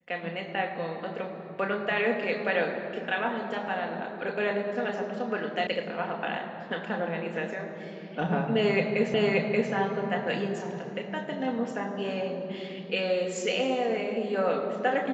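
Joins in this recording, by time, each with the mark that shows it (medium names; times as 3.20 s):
5.67 s: sound stops dead
9.14 s: repeat of the last 0.58 s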